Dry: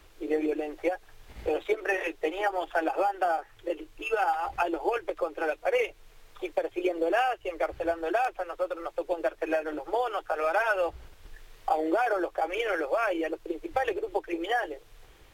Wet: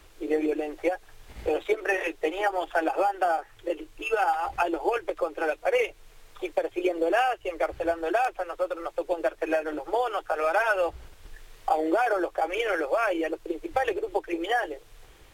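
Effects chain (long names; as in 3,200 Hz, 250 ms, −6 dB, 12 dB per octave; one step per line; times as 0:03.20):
parametric band 8,600 Hz +3 dB 0.89 octaves
level +2 dB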